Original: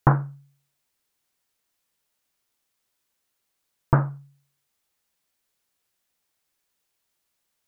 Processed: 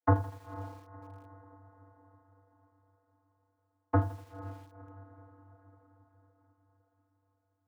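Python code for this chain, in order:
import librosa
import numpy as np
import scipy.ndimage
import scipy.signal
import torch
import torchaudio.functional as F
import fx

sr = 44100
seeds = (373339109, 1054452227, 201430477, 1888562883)

y = fx.wiener(x, sr, points=15)
y = fx.high_shelf(y, sr, hz=2100.0, db=-2.0)
y = fx.echo_diffused(y, sr, ms=495, feedback_pct=52, wet_db=-14.5)
y = fx.vocoder(y, sr, bands=32, carrier='square', carrier_hz=97.3)
y = fx.echo_crushed(y, sr, ms=81, feedback_pct=55, bits=7, wet_db=-15.0)
y = y * librosa.db_to_amplitude(-5.5)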